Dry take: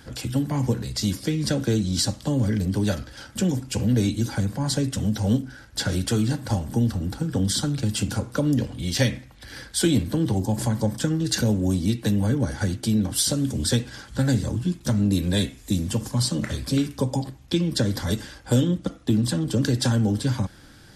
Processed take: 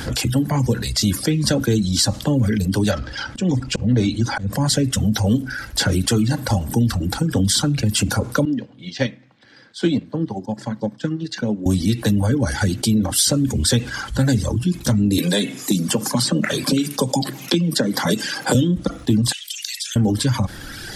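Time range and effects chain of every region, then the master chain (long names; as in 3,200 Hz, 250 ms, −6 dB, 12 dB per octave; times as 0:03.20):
0:02.91–0:04.53: volume swells 159 ms + high-frequency loss of the air 100 metres
0:08.45–0:11.66: high-pass filter 140 Hz 24 dB per octave + high-frequency loss of the air 150 metres + expander for the loud parts 2.5 to 1, over −39 dBFS
0:15.18–0:18.55: Chebyshev high-pass filter 150 Hz, order 4 + multiband upward and downward compressor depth 100%
0:19.32–0:19.96: Butterworth high-pass 2,200 Hz + downward compressor, threshold −39 dBFS
whole clip: reverb reduction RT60 1.2 s; envelope flattener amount 50%; level +3 dB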